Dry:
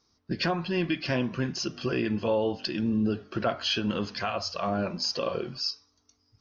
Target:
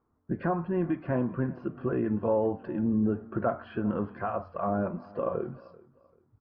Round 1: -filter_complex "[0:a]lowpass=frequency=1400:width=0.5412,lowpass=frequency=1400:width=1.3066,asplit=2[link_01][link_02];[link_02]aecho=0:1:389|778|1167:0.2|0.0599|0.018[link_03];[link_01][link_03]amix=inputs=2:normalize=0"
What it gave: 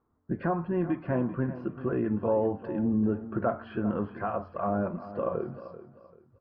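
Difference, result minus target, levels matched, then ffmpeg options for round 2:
echo-to-direct +8 dB
-filter_complex "[0:a]lowpass=frequency=1400:width=0.5412,lowpass=frequency=1400:width=1.3066,asplit=2[link_01][link_02];[link_02]aecho=0:1:389|778:0.0794|0.0238[link_03];[link_01][link_03]amix=inputs=2:normalize=0"

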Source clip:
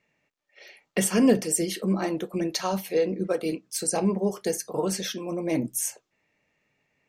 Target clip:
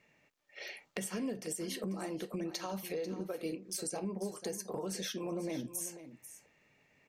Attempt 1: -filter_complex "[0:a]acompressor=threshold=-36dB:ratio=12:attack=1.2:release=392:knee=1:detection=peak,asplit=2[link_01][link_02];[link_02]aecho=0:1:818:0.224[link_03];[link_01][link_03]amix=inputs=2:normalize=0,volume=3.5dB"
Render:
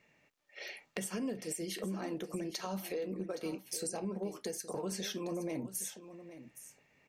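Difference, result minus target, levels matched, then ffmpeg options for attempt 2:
echo 326 ms late
-filter_complex "[0:a]acompressor=threshold=-36dB:ratio=12:attack=1.2:release=392:knee=1:detection=peak,asplit=2[link_01][link_02];[link_02]aecho=0:1:492:0.224[link_03];[link_01][link_03]amix=inputs=2:normalize=0,volume=3.5dB"

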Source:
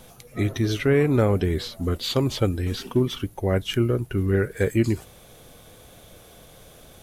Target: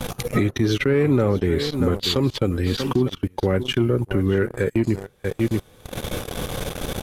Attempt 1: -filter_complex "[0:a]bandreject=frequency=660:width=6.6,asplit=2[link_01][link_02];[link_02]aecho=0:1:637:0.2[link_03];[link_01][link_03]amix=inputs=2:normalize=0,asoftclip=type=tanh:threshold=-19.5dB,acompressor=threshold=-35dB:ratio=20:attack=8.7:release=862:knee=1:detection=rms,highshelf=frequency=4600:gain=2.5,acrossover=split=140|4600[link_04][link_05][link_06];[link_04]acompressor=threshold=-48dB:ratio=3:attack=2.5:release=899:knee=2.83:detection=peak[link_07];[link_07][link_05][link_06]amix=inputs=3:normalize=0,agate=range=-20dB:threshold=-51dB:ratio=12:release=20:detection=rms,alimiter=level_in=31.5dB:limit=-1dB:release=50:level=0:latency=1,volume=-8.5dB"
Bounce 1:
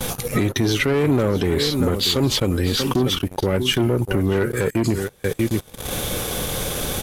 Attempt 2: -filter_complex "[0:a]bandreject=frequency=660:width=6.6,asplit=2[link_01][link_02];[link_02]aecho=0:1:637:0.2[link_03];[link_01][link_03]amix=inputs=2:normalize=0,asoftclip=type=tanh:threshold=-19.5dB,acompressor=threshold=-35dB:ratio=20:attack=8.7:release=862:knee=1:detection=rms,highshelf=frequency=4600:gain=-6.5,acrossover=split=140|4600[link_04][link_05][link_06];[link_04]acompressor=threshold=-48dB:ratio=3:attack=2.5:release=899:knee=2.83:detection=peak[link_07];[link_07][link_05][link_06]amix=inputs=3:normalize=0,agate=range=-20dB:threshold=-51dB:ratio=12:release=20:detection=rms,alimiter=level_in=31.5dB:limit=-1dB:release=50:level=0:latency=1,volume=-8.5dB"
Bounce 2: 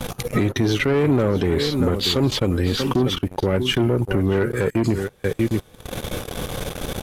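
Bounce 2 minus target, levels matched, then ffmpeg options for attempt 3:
soft clipping: distortion +10 dB
-filter_complex "[0:a]bandreject=frequency=660:width=6.6,asplit=2[link_01][link_02];[link_02]aecho=0:1:637:0.2[link_03];[link_01][link_03]amix=inputs=2:normalize=0,asoftclip=type=tanh:threshold=-11.5dB,acompressor=threshold=-35dB:ratio=20:attack=8.7:release=862:knee=1:detection=rms,highshelf=frequency=4600:gain=-6.5,acrossover=split=140|4600[link_04][link_05][link_06];[link_04]acompressor=threshold=-48dB:ratio=3:attack=2.5:release=899:knee=2.83:detection=peak[link_07];[link_07][link_05][link_06]amix=inputs=3:normalize=0,agate=range=-20dB:threshold=-51dB:ratio=12:release=20:detection=rms,alimiter=level_in=31.5dB:limit=-1dB:release=50:level=0:latency=1,volume=-8.5dB"

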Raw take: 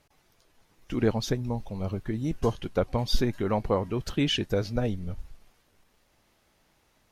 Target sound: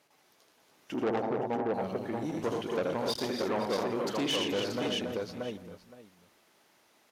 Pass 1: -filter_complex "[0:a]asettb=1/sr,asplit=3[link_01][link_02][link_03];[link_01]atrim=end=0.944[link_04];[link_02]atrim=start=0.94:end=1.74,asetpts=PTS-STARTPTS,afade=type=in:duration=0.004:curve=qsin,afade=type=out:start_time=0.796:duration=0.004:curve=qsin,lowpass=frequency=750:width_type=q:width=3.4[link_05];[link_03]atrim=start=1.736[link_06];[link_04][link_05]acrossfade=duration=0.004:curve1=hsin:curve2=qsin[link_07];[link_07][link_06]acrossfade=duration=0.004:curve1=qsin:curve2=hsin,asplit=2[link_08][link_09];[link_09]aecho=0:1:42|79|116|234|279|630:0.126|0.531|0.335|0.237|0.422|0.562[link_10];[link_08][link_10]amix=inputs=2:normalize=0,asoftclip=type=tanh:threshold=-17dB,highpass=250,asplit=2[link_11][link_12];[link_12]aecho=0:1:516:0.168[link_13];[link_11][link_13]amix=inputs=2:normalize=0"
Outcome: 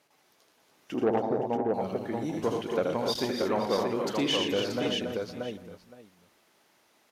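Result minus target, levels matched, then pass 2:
soft clipping: distortion −7 dB
-filter_complex "[0:a]asettb=1/sr,asplit=3[link_01][link_02][link_03];[link_01]atrim=end=0.944[link_04];[link_02]atrim=start=0.94:end=1.74,asetpts=PTS-STARTPTS,afade=type=in:duration=0.004:curve=qsin,afade=type=out:start_time=0.796:duration=0.004:curve=qsin,lowpass=frequency=750:width_type=q:width=3.4[link_05];[link_03]atrim=start=1.736[link_06];[link_04][link_05]acrossfade=duration=0.004:curve1=hsin:curve2=qsin[link_07];[link_07][link_06]acrossfade=duration=0.004:curve1=qsin:curve2=hsin,asplit=2[link_08][link_09];[link_09]aecho=0:1:42|79|116|234|279|630:0.126|0.531|0.335|0.237|0.422|0.562[link_10];[link_08][link_10]amix=inputs=2:normalize=0,asoftclip=type=tanh:threshold=-24.5dB,highpass=250,asplit=2[link_11][link_12];[link_12]aecho=0:1:516:0.168[link_13];[link_11][link_13]amix=inputs=2:normalize=0"

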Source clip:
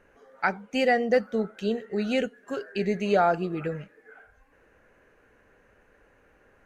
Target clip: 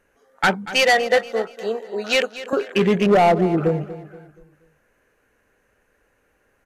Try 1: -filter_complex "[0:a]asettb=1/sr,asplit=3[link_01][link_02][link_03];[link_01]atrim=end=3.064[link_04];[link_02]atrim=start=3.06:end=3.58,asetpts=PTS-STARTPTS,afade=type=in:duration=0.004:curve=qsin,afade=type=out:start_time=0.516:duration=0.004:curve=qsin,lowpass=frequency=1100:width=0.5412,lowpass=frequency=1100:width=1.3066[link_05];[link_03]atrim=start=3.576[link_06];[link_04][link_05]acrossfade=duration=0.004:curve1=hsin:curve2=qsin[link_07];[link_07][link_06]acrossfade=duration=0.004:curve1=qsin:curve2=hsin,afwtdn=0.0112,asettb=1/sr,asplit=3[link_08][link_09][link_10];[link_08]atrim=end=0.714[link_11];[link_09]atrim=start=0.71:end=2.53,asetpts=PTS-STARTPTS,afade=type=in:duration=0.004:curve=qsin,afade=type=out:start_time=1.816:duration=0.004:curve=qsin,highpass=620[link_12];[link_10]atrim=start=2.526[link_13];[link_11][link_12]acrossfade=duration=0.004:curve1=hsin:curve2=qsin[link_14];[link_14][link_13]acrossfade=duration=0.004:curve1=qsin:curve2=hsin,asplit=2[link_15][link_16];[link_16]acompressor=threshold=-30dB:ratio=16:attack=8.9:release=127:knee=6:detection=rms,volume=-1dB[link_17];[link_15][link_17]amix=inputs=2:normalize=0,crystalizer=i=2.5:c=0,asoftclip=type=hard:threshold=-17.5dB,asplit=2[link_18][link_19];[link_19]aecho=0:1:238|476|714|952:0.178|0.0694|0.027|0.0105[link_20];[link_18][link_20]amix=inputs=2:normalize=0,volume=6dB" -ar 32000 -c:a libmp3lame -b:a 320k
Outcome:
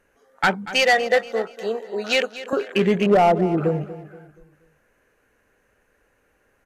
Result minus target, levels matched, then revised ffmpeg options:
downward compressor: peak gain reduction +10 dB
-filter_complex "[0:a]asettb=1/sr,asplit=3[link_01][link_02][link_03];[link_01]atrim=end=3.064[link_04];[link_02]atrim=start=3.06:end=3.58,asetpts=PTS-STARTPTS,afade=type=in:duration=0.004:curve=qsin,afade=type=out:start_time=0.516:duration=0.004:curve=qsin,lowpass=frequency=1100:width=0.5412,lowpass=frequency=1100:width=1.3066[link_05];[link_03]atrim=start=3.576[link_06];[link_04][link_05]acrossfade=duration=0.004:curve1=hsin:curve2=qsin[link_07];[link_07][link_06]acrossfade=duration=0.004:curve1=qsin:curve2=hsin,afwtdn=0.0112,asettb=1/sr,asplit=3[link_08][link_09][link_10];[link_08]atrim=end=0.714[link_11];[link_09]atrim=start=0.71:end=2.53,asetpts=PTS-STARTPTS,afade=type=in:duration=0.004:curve=qsin,afade=type=out:start_time=1.816:duration=0.004:curve=qsin,highpass=620[link_12];[link_10]atrim=start=2.526[link_13];[link_11][link_12]acrossfade=duration=0.004:curve1=hsin:curve2=qsin[link_14];[link_14][link_13]acrossfade=duration=0.004:curve1=qsin:curve2=hsin,asplit=2[link_15][link_16];[link_16]acompressor=threshold=-19dB:ratio=16:attack=8.9:release=127:knee=6:detection=rms,volume=-1dB[link_17];[link_15][link_17]amix=inputs=2:normalize=0,crystalizer=i=2.5:c=0,asoftclip=type=hard:threshold=-17.5dB,asplit=2[link_18][link_19];[link_19]aecho=0:1:238|476|714|952:0.178|0.0694|0.027|0.0105[link_20];[link_18][link_20]amix=inputs=2:normalize=0,volume=6dB" -ar 32000 -c:a libmp3lame -b:a 320k

